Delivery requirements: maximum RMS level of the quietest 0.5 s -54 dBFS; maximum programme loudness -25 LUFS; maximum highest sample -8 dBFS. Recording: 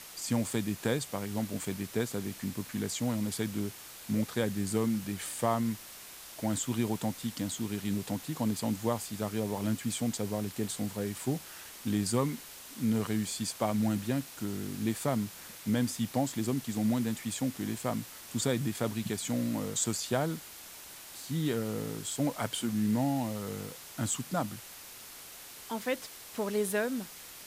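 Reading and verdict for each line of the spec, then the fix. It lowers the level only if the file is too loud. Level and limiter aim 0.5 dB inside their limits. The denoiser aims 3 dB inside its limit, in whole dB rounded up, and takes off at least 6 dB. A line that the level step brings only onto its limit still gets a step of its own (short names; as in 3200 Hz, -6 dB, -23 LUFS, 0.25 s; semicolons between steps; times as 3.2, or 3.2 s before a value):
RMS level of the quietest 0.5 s -48 dBFS: fail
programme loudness -33.0 LUFS: OK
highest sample -14.0 dBFS: OK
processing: denoiser 9 dB, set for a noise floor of -48 dBFS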